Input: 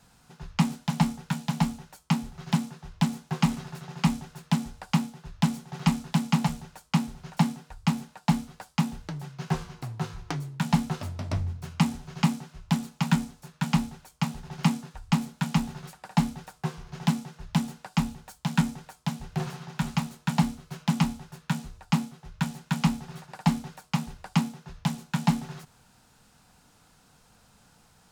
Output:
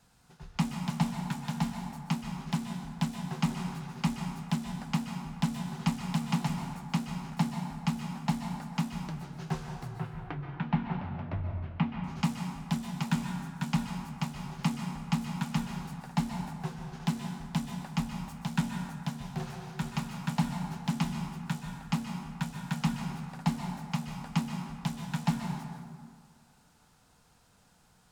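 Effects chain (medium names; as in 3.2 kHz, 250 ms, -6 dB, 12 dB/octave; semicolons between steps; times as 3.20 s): 9.95–12.04 s: low-pass 2.8 kHz 24 dB/octave; plate-style reverb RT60 1.9 s, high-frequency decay 0.5×, pre-delay 115 ms, DRR 3.5 dB; trim -6 dB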